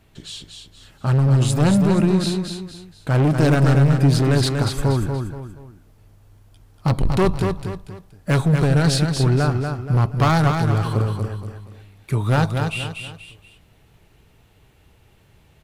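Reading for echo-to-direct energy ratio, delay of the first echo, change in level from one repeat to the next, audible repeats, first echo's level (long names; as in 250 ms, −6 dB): −5.0 dB, 238 ms, −8.5 dB, 3, −5.5 dB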